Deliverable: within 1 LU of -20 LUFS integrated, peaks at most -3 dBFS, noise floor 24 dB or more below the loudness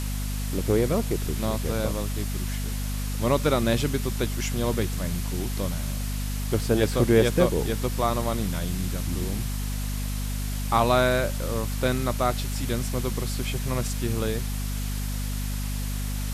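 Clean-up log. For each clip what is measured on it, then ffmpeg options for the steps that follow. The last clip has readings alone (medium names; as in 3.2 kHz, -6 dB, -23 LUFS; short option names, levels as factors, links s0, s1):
hum 50 Hz; highest harmonic 250 Hz; hum level -27 dBFS; noise floor -29 dBFS; noise floor target -51 dBFS; loudness -26.5 LUFS; peak level -6.5 dBFS; loudness target -20.0 LUFS
-> -af "bandreject=f=50:t=h:w=4,bandreject=f=100:t=h:w=4,bandreject=f=150:t=h:w=4,bandreject=f=200:t=h:w=4,bandreject=f=250:t=h:w=4"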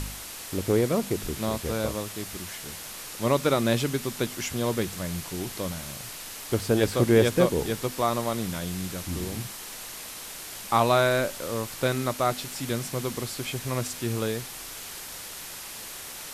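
hum not found; noise floor -40 dBFS; noise floor target -52 dBFS
-> -af "afftdn=nr=12:nf=-40"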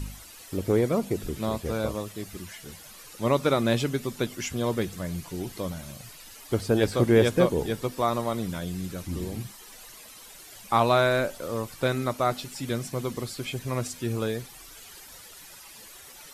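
noise floor -47 dBFS; noise floor target -52 dBFS
-> -af "afftdn=nr=6:nf=-47"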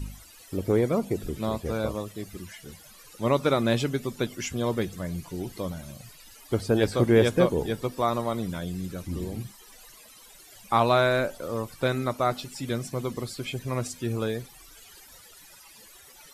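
noise floor -51 dBFS; noise floor target -52 dBFS
-> -af "afftdn=nr=6:nf=-51"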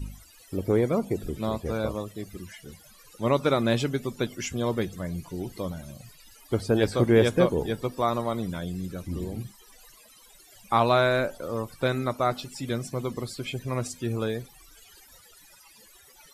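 noise floor -54 dBFS; loudness -27.5 LUFS; peak level -7.5 dBFS; loudness target -20.0 LUFS
-> -af "volume=2.37,alimiter=limit=0.708:level=0:latency=1"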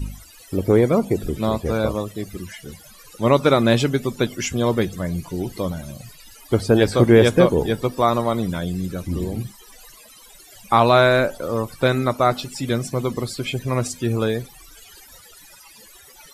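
loudness -20.5 LUFS; peak level -3.0 dBFS; noise floor -47 dBFS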